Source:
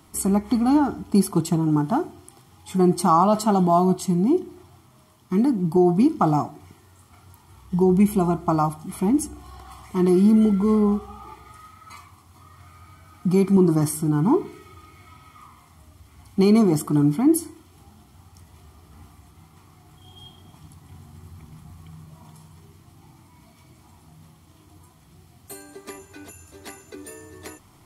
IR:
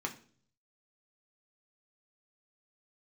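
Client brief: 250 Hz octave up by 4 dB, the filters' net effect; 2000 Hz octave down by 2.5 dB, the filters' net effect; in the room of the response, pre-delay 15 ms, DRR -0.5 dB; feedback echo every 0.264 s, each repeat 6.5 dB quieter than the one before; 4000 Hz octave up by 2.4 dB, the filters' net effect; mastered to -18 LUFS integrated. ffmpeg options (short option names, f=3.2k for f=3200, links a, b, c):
-filter_complex "[0:a]equalizer=f=250:t=o:g=5.5,equalizer=f=2k:t=o:g=-4.5,equalizer=f=4k:t=o:g=4,aecho=1:1:264|528|792|1056|1320|1584:0.473|0.222|0.105|0.0491|0.0231|0.0109,asplit=2[a][b];[1:a]atrim=start_sample=2205,adelay=15[c];[b][c]afir=irnorm=-1:irlink=0,volume=-2.5dB[d];[a][d]amix=inputs=2:normalize=0,volume=-5dB"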